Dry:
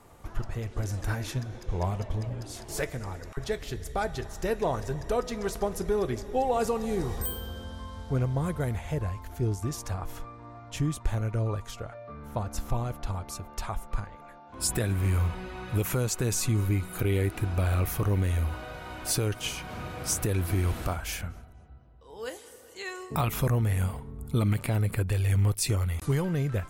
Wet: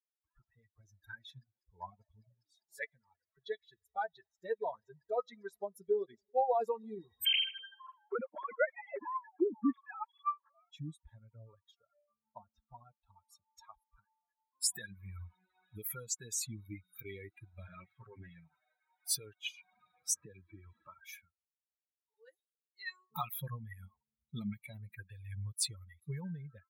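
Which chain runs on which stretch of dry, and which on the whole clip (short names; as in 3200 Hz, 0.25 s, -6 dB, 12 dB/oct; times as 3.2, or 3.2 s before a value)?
7.25–10.71 sine-wave speech + high shelf 2100 Hz +4 dB
12.33–13.09 expander -39 dBFS + LPF 4300 Hz
17.67–19.03 minimum comb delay 7.8 ms + LPF 3600 Hz + notches 50/100/150/200/250/300/350 Hz
20.14–20.98 air absorption 150 m + notch comb 720 Hz + three-band squash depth 40%
whole clip: per-bin expansion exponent 3; Bessel high-pass 310 Hz, order 2; gain +1 dB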